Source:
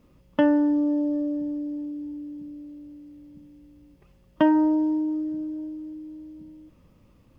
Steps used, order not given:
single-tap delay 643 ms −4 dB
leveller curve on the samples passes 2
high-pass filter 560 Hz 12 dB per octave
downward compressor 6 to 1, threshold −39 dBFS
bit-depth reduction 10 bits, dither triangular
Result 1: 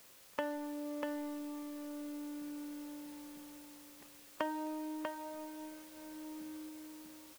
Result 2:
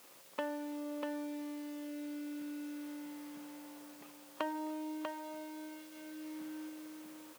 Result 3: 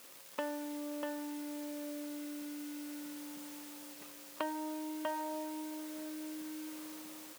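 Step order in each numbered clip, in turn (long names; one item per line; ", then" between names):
downward compressor, then high-pass filter, then leveller curve on the samples, then bit-depth reduction, then single-tap delay
downward compressor, then leveller curve on the samples, then single-tap delay, then bit-depth reduction, then high-pass filter
single-tap delay, then downward compressor, then bit-depth reduction, then leveller curve on the samples, then high-pass filter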